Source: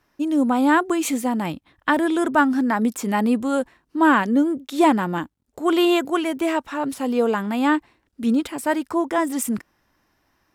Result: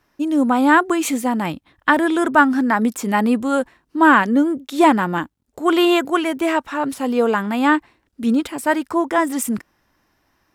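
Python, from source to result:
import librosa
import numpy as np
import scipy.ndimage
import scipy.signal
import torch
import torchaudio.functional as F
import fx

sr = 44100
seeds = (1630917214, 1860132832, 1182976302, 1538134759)

y = fx.dynamic_eq(x, sr, hz=1500.0, q=0.88, threshold_db=-32.0, ratio=4.0, max_db=4)
y = F.gain(torch.from_numpy(y), 2.0).numpy()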